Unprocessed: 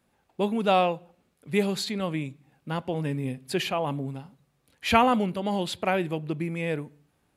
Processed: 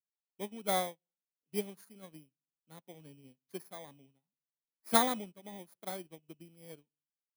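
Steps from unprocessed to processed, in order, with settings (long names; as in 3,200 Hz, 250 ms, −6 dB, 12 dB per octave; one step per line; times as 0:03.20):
samples in bit-reversed order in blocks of 16 samples
high-pass filter 140 Hz 24 dB per octave
expander for the loud parts 2.5 to 1, over −42 dBFS
level −4.5 dB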